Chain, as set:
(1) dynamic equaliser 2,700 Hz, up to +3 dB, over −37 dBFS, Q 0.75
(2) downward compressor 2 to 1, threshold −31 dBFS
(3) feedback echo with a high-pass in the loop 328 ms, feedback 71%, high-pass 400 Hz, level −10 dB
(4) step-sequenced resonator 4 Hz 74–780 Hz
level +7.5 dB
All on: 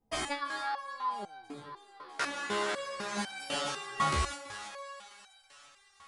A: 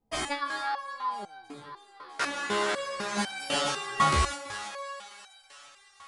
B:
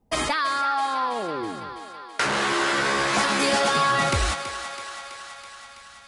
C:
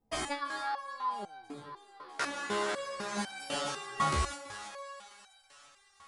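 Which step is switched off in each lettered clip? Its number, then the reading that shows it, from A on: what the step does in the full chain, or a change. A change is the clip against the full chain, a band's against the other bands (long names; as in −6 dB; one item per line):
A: 2, average gain reduction 3.5 dB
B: 4, 125 Hz band −2.0 dB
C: 1, 4 kHz band −2.0 dB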